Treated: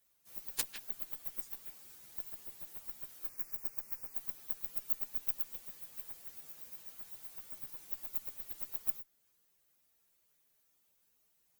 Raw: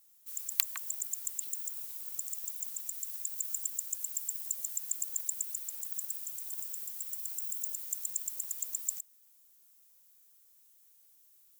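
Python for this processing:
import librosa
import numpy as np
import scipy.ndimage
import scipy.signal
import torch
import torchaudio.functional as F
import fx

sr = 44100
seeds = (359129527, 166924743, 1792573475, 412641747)

y = fx.partial_stretch(x, sr, pct=127)
y = fx.cheby_harmonics(y, sr, harmonics=(7, 8), levels_db=(-12, -32), full_scale_db=-27.0)
y = fx.cheby1_bandstop(y, sr, low_hz=2400.0, high_hz=5000.0, order=2, at=(3.29, 4.14))
y = y * librosa.db_to_amplitude(10.5)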